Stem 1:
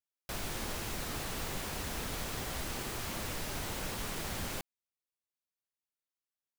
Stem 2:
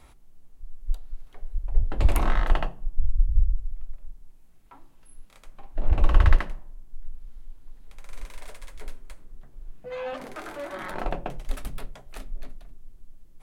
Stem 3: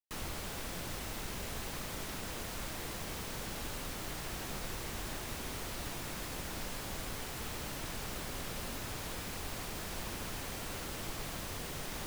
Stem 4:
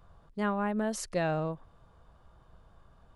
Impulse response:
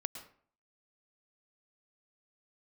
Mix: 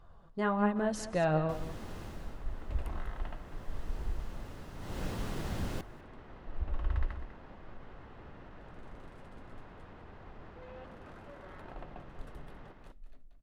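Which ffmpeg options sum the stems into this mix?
-filter_complex "[0:a]lowshelf=f=500:g=10,adelay=1200,volume=8.5dB,afade=t=out:st=2.04:d=0.36:silence=0.237137,afade=t=in:st=3.41:d=0.49:silence=0.375837,afade=t=in:st=4.78:d=0.25:silence=0.266073,asplit=2[a][b];[b]volume=-21dB[c];[1:a]equalizer=f=62:t=o:w=0.77:g=6.5,adelay=700,volume=-18.5dB,asplit=3[d][e][f];[e]volume=-21.5dB[g];[f]volume=-11dB[h];[2:a]lowpass=1.7k,alimiter=level_in=11.5dB:limit=-24dB:level=0:latency=1:release=24,volume=-11.5dB,adelay=650,volume=-8.5dB,asplit=2[i][j];[j]volume=-3dB[k];[3:a]flanger=delay=2.4:depth=5.4:regen=45:speed=1.2:shape=triangular,volume=2.5dB,asplit=3[l][m][n];[m]volume=-10.5dB[o];[n]volume=-12dB[p];[4:a]atrim=start_sample=2205[q];[g][o]amix=inputs=2:normalize=0[r];[r][q]afir=irnorm=-1:irlink=0[s];[c][h][k][p]amix=inputs=4:normalize=0,aecho=0:1:198:1[t];[a][d][i][l][s][t]amix=inputs=6:normalize=0,lowpass=f=4k:p=1,bandreject=f=2.3k:w=16"

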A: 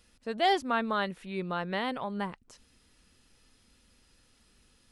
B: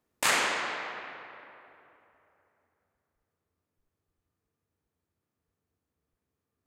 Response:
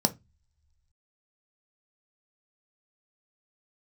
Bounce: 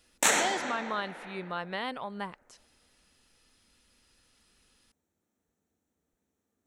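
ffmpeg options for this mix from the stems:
-filter_complex "[0:a]lowshelf=f=460:g=-6.5,alimiter=limit=-22.5dB:level=0:latency=1,volume=-0.5dB,asplit=2[a][b];[1:a]equalizer=f=6.9k:t=o:w=0.42:g=6,volume=0dB,asplit=2[c][d];[d]volume=-16.5dB[e];[b]apad=whole_len=293707[f];[c][f]sidechaincompress=threshold=-36dB:ratio=8:attack=16:release=410[g];[2:a]atrim=start_sample=2205[h];[e][h]afir=irnorm=-1:irlink=0[i];[a][g][i]amix=inputs=3:normalize=0"

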